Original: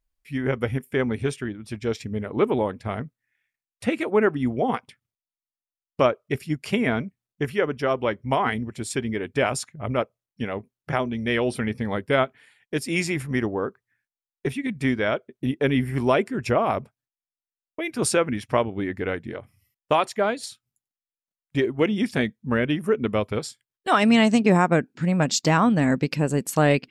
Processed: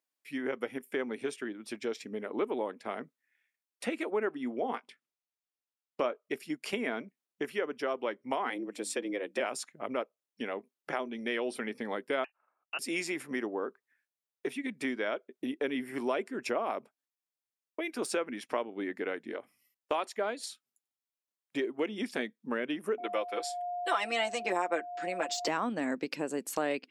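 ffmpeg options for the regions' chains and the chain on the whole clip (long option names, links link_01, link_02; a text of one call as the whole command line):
ffmpeg -i in.wav -filter_complex "[0:a]asettb=1/sr,asplit=3[link_01][link_02][link_03];[link_01]atrim=end=4.404[link_04];[link_02]atrim=start=4.4:end=6.2,asetpts=PTS-STARTPTS,afade=type=in:duration=0.004:curve=qsin,afade=type=out:start_time=1.796:duration=0.004:curve=qsin,highshelf=frequency=9700:gain=-10,asplit=2[link_05][link_06];[link_06]adelay=21,volume=-13.5dB[link_07];[link_05][link_07]amix=inputs=2:normalize=0,atrim=end_sample=79380[link_08];[link_03]atrim=start=6.196[link_09];[link_04][link_08]acrossfade=duration=0.004:curve1=hsin:curve2=qsin[link_10];[link_10][link_09]acrossfade=duration=0.004:curve1=qsin:curve2=hsin,asettb=1/sr,asplit=3[link_11][link_12][link_13];[link_11]atrim=end=8.504[link_14];[link_12]atrim=start=8.5:end=9.4,asetpts=PTS-STARTPTS,afade=type=in:duration=0.004:curve=qsin,afade=type=out:start_time=0.896:duration=0.004:curve=qsin,bandreject=frequency=50:width_type=h:width=6,bandreject=frequency=100:width_type=h:width=6,bandreject=frequency=150:width_type=h:width=6,bandreject=frequency=200:width_type=h:width=6,afreqshift=93[link_15];[link_13]atrim=start=9.396[link_16];[link_14][link_15]acrossfade=duration=0.004:curve1=hsin:curve2=qsin[link_17];[link_17][link_16]acrossfade=duration=0.004:curve1=qsin:curve2=hsin,asettb=1/sr,asplit=3[link_18][link_19][link_20];[link_18]atrim=end=12.244[link_21];[link_19]atrim=start=12.24:end=12.79,asetpts=PTS-STARTPTS,afade=type=in:duration=0.004:curve=qsin,afade=type=out:start_time=0.546:duration=0.004:curve=qsin,highpass=frequency=790:poles=1,lowpass=frequency=2600:width_type=q:width=0.5098,lowpass=frequency=2600:width_type=q:width=0.6013,lowpass=frequency=2600:width_type=q:width=0.9,lowpass=frequency=2600:width_type=q:width=2.563,afreqshift=-3100,agate=range=-16dB:threshold=-54dB:ratio=16:release=100:detection=peak[link_22];[link_20]atrim=start=12.786[link_23];[link_21][link_22]acrossfade=duration=0.004:curve1=hsin:curve2=qsin[link_24];[link_24][link_23]acrossfade=duration=0.004:curve1=qsin:curve2=hsin,asettb=1/sr,asplit=3[link_25][link_26][link_27];[link_25]atrim=end=22.984[link_28];[link_26]atrim=start=22.98:end=25.48,asetpts=PTS-STARTPTS,afade=type=in:duration=0.004:curve=qsin,afade=type=out:start_time=2.496:duration=0.004:curve=qsin,highpass=440,aecho=1:1:5.9:0.95,atrim=end_sample=110250,aeval=exprs='val(0)+0.0316*sin(2*PI*710*n/s)':channel_layout=same[link_29];[link_27]atrim=start=25.476[link_30];[link_28][link_29]acrossfade=duration=0.004:curve1=hsin:curve2=qsin[link_31];[link_31][link_30]acrossfade=duration=0.004:curve1=qsin:curve2=hsin,deesser=0.45,highpass=frequency=260:width=0.5412,highpass=frequency=260:width=1.3066,acompressor=threshold=-34dB:ratio=2,volume=-1.5dB" out.wav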